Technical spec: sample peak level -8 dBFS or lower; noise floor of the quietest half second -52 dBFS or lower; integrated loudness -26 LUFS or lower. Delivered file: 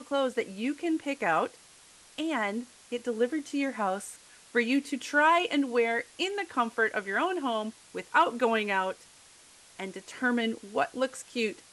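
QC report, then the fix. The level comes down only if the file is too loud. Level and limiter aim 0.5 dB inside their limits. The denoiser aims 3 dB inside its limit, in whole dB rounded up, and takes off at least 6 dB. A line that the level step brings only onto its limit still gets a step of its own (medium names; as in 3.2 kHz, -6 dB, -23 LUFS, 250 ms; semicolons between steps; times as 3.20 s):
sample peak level -11.5 dBFS: pass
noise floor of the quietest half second -56 dBFS: pass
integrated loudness -29.5 LUFS: pass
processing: none needed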